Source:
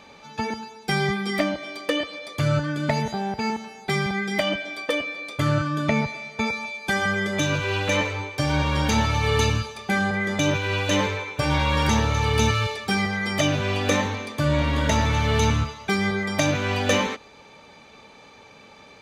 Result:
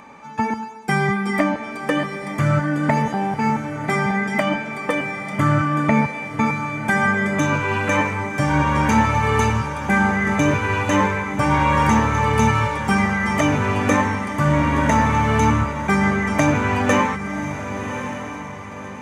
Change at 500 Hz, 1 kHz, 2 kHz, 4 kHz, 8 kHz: +2.5 dB, +8.0 dB, +4.5 dB, -6.0 dB, -0.5 dB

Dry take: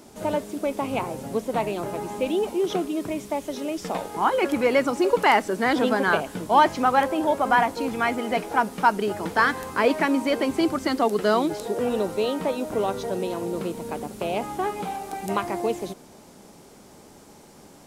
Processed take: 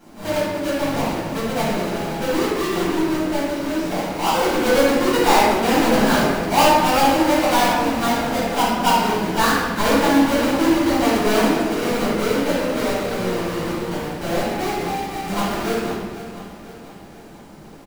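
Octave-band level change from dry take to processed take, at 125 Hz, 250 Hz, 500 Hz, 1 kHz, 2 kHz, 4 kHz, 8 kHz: +9.0 dB, +7.0 dB, +4.0 dB, +4.0 dB, +3.5 dB, +9.5 dB, +11.0 dB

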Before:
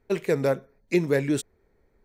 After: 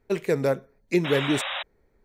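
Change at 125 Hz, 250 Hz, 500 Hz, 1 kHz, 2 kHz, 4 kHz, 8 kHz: 0.0 dB, 0.0 dB, 0.0 dB, +5.0 dB, +3.5 dB, +11.0 dB, 0.0 dB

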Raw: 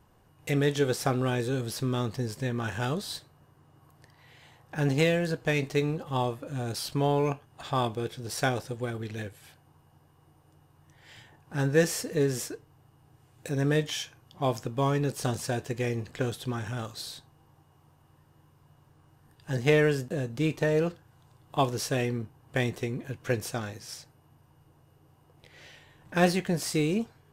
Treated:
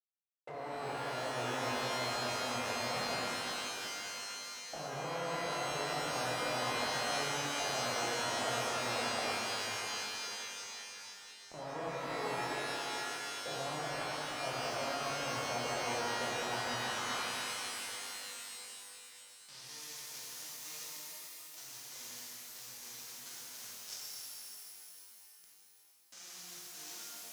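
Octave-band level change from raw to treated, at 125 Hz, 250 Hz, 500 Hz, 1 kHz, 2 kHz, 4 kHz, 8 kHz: -19.5 dB, -16.0 dB, -11.0 dB, -2.0 dB, -3.5 dB, +0.5 dB, -0.5 dB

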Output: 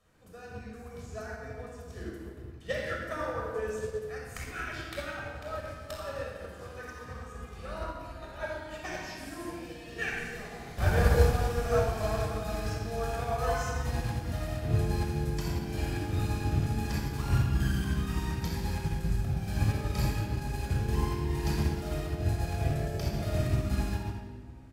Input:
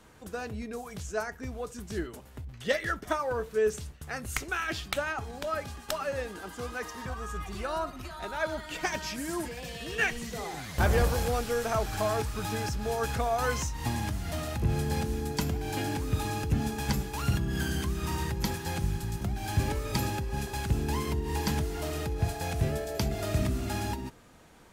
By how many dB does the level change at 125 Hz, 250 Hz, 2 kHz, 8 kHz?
+2.0 dB, -1.5 dB, -3.5 dB, -6.5 dB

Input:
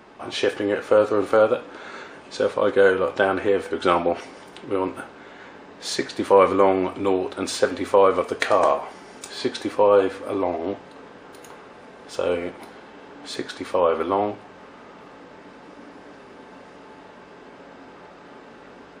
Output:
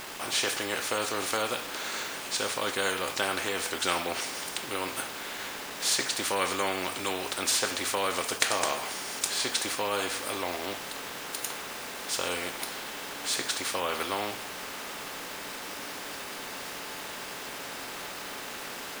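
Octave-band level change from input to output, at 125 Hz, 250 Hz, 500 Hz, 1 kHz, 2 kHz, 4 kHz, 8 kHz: -8.5 dB, -11.5 dB, -14.5 dB, -8.0 dB, -1.5 dB, +4.5 dB, +9.5 dB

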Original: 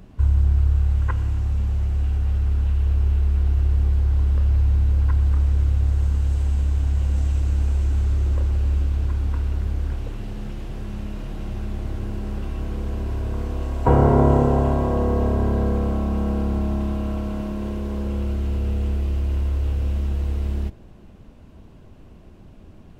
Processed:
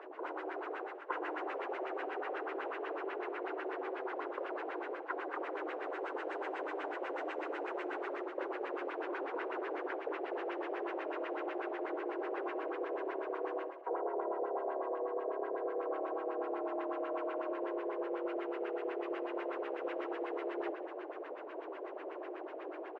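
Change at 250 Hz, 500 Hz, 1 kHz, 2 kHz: -15.5 dB, -7.0 dB, -6.5 dB, 0.0 dB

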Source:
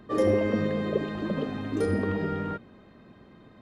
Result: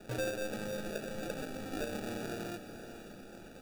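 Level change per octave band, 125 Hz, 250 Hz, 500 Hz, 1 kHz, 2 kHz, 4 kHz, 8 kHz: -13.5 dB, -13.0 dB, -11.5 dB, -9.5 dB, -5.5 dB, -1.5 dB, +6.0 dB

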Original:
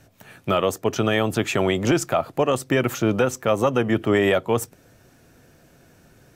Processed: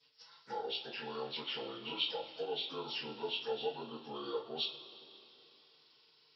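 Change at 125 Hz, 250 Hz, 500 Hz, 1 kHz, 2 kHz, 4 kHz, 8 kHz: -31.5 dB, -26.0 dB, -19.5 dB, -17.5 dB, -20.0 dB, -5.0 dB, under -40 dB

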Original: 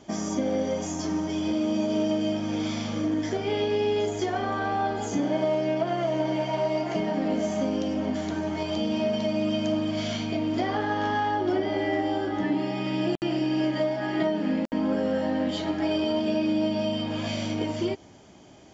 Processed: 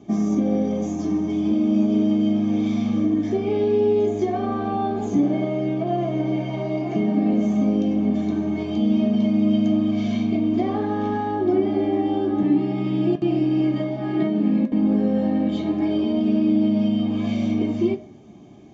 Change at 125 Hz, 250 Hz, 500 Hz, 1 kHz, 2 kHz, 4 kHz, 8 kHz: +7.0 dB, +7.5 dB, +2.5 dB, 0.0 dB, -5.5 dB, -5.5 dB, no reading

